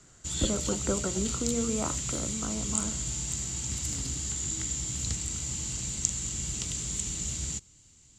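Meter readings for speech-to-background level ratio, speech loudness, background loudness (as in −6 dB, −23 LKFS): −3.0 dB, −34.0 LKFS, −31.0 LKFS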